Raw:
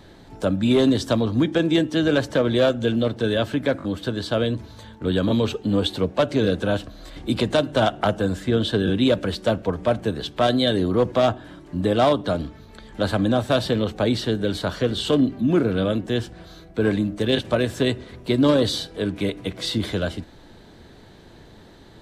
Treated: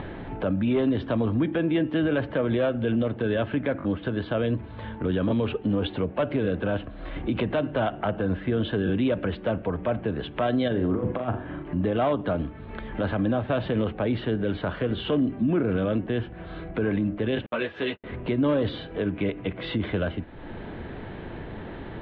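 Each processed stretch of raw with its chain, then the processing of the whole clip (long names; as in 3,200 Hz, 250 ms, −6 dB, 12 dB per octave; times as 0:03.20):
0:10.68–0:11.63: compressor whose output falls as the input rises −22 dBFS, ratio −0.5 + high-frequency loss of the air 240 metres + flutter between parallel walls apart 6.9 metres, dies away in 0.29 s
0:17.46–0:18.04: RIAA equalisation recording + noise gate −32 dBFS, range −48 dB + string-ensemble chorus
whole clip: Butterworth low-pass 2,900 Hz 36 dB per octave; upward compression, threshold −26 dBFS; brickwall limiter −16.5 dBFS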